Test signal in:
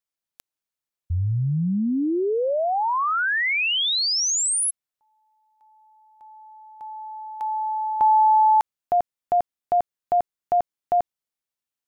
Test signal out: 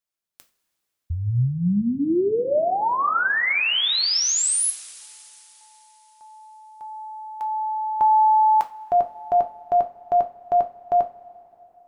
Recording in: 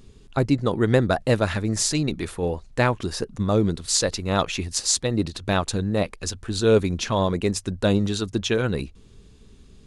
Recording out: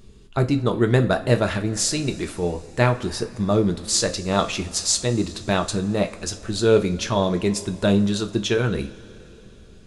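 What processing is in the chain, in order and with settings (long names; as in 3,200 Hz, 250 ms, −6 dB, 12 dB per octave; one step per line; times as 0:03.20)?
coupled-rooms reverb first 0.29 s, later 3.8 s, from −21 dB, DRR 5.5 dB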